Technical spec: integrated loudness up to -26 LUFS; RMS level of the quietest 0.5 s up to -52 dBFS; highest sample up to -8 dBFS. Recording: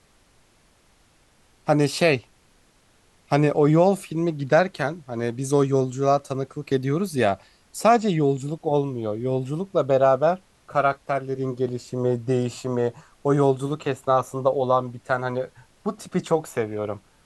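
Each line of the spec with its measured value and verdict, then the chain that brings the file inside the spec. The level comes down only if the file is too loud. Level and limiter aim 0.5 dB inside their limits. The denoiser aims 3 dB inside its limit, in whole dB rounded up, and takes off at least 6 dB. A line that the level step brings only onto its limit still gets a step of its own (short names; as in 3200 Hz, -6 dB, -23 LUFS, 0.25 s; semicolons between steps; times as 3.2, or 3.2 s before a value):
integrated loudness -23.5 LUFS: fail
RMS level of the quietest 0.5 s -59 dBFS: OK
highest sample -5.0 dBFS: fail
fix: gain -3 dB; limiter -8.5 dBFS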